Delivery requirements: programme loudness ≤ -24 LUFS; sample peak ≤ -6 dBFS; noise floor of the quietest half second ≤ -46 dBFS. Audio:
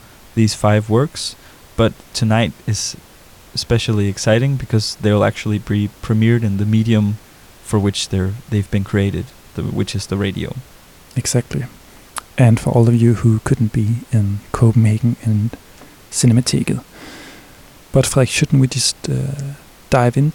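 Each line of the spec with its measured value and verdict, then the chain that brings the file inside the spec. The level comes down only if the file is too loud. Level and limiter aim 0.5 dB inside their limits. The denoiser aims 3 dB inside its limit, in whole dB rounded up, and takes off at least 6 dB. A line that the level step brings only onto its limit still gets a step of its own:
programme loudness -17.0 LUFS: fail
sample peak -2.0 dBFS: fail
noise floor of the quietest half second -43 dBFS: fail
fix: gain -7.5 dB

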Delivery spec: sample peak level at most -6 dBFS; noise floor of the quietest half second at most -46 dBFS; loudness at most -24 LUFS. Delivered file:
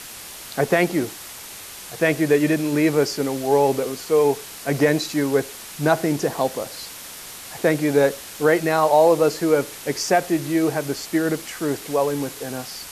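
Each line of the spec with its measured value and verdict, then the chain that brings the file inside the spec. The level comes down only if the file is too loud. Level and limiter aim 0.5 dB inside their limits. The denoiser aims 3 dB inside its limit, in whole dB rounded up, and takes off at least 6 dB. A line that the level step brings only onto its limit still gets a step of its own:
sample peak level -5.5 dBFS: fail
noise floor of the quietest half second -38 dBFS: fail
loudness -21.0 LUFS: fail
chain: denoiser 8 dB, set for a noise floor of -38 dBFS; gain -3.5 dB

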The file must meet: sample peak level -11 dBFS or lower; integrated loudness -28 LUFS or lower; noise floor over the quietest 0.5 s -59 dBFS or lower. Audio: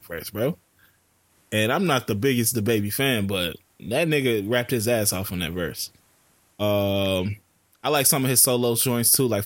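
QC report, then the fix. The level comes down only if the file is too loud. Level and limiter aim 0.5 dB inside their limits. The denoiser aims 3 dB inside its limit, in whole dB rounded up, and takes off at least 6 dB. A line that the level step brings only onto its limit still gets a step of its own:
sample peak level -4.5 dBFS: fail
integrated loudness -22.0 LUFS: fail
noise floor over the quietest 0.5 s -63 dBFS: OK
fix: gain -6.5 dB; limiter -11.5 dBFS

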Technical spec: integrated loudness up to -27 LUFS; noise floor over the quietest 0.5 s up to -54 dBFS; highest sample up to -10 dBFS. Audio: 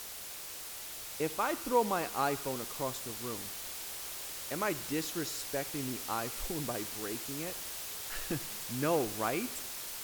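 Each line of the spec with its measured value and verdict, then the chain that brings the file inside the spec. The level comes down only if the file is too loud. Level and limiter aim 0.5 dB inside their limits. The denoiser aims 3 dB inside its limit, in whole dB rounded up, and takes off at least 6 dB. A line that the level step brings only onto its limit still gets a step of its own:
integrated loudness -35.5 LUFS: OK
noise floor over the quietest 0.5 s -44 dBFS: fail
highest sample -16.0 dBFS: OK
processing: denoiser 13 dB, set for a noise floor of -44 dBFS

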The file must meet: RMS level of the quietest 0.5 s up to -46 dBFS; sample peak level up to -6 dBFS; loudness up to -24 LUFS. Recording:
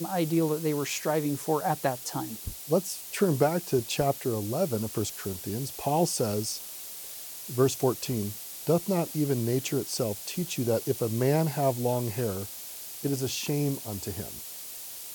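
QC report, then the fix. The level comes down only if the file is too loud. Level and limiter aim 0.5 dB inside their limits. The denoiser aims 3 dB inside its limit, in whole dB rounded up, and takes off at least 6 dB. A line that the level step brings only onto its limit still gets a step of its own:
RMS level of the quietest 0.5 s -41 dBFS: fail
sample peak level -10.5 dBFS: OK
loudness -29.0 LUFS: OK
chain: denoiser 8 dB, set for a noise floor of -41 dBFS

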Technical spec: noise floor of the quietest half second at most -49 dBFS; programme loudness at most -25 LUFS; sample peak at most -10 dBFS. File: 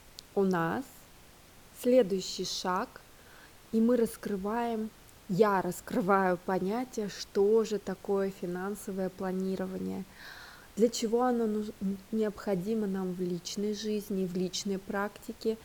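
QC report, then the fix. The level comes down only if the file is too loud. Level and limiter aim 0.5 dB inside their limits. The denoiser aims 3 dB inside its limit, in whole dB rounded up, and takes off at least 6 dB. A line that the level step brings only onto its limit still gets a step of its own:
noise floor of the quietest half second -55 dBFS: OK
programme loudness -31.5 LUFS: OK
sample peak -11.5 dBFS: OK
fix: none

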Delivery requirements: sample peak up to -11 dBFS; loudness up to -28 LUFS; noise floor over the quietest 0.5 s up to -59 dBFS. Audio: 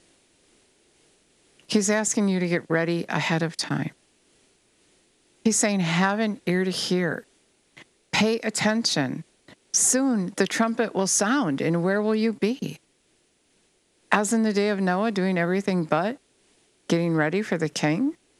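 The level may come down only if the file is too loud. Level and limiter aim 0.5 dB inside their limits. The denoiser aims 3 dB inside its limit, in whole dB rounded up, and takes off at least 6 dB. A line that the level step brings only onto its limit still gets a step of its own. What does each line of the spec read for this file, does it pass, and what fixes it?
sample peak -2.5 dBFS: fail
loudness -24.0 LUFS: fail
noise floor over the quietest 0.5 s -66 dBFS: OK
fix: gain -4.5 dB; limiter -11.5 dBFS

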